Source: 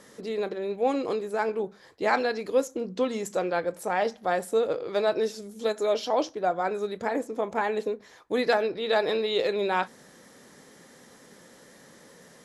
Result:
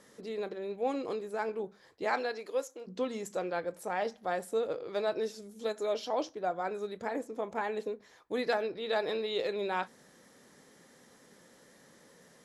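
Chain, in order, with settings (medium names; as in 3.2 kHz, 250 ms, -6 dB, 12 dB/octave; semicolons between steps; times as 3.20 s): 2.04–2.86 s: high-pass 210 Hz -> 670 Hz 12 dB/octave; trim -7 dB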